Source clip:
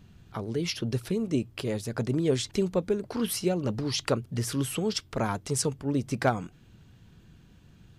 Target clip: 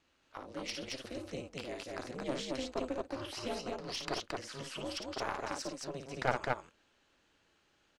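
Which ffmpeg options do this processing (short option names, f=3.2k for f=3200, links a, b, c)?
-filter_complex "[0:a]highpass=520,acrossover=split=5900[a][b];[b]acompressor=threshold=-47dB:ratio=4:attack=1:release=60[c];[a][c]amix=inputs=2:normalize=0,lowpass=7.8k,bandreject=f=3.5k:w=17,aeval=exprs='val(0)*sin(2*PI*130*n/s)':c=same,aeval=exprs='0.188*(cos(1*acos(clip(val(0)/0.188,-1,1)))-cos(1*PI/2))+0.0299*(cos(3*acos(clip(val(0)/0.188,-1,1)))-cos(3*PI/2))+0.00944*(cos(4*acos(clip(val(0)/0.188,-1,1)))-cos(4*PI/2))':c=same,aeval=exprs='clip(val(0),-1,0.0188)':c=same,aecho=1:1:55.39|221.6:0.501|0.794,volume=1.5dB"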